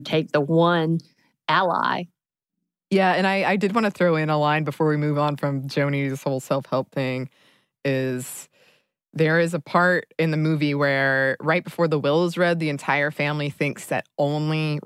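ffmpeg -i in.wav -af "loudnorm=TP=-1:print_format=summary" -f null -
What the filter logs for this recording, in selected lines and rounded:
Input Integrated:    -22.4 LUFS
Input True Peak:      -5.7 dBTP
Input LRA:             3.8 LU
Input Threshold:     -32.7 LUFS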